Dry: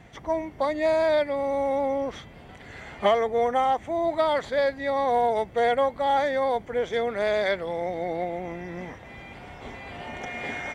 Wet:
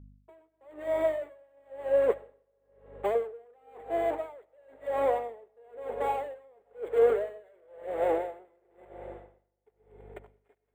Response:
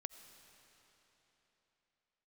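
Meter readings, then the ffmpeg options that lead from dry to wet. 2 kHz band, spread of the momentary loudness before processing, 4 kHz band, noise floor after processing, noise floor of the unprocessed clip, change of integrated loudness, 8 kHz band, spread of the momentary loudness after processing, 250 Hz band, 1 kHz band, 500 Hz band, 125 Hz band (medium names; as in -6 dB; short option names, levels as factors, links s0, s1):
-13.5 dB, 17 LU, under -15 dB, -76 dBFS, -46 dBFS, -5.0 dB, no reading, 23 LU, -11.0 dB, -10.5 dB, -5.0 dB, under -10 dB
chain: -filter_complex "[0:a]aemphasis=mode=reproduction:type=bsi,agate=range=0.0282:threshold=0.0447:ratio=16:detection=peak,areverse,acompressor=threshold=0.0282:ratio=6,areverse,aeval=exprs='sgn(val(0))*max(abs(val(0))-0.00141,0)':c=same,asplit=2[s0][s1];[s1]highpass=f=720:p=1,volume=25.1,asoftclip=type=tanh:threshold=0.0668[s2];[s0][s2]amix=inputs=2:normalize=0,lowpass=f=1800:p=1,volume=0.501,acrossover=split=2700[s3][s4];[s3]aphaser=in_gain=1:out_gain=1:delay=3:decay=0.34:speed=1.9:type=triangular[s5];[s4]acrusher=samples=8:mix=1:aa=0.000001[s6];[s5][s6]amix=inputs=2:normalize=0,highpass=f=420:t=q:w=4.9,aeval=exprs='val(0)+0.00447*(sin(2*PI*50*n/s)+sin(2*PI*2*50*n/s)/2+sin(2*PI*3*50*n/s)/3+sin(2*PI*4*50*n/s)/4+sin(2*PI*5*50*n/s)/5)':c=same[s7];[1:a]atrim=start_sample=2205[s8];[s7][s8]afir=irnorm=-1:irlink=0,aeval=exprs='val(0)*pow(10,-36*(0.5-0.5*cos(2*PI*0.99*n/s))/20)':c=same,volume=1.33"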